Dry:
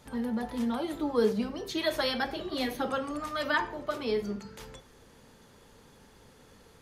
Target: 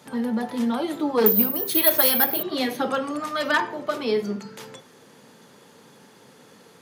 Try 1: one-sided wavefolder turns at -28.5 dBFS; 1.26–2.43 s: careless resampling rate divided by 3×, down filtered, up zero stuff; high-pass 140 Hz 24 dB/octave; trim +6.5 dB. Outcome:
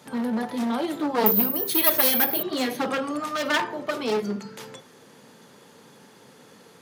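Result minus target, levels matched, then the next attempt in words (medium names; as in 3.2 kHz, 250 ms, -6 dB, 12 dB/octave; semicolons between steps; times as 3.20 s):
one-sided wavefolder: distortion +12 dB
one-sided wavefolder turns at -21 dBFS; 1.26–2.43 s: careless resampling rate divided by 3×, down filtered, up zero stuff; high-pass 140 Hz 24 dB/octave; trim +6.5 dB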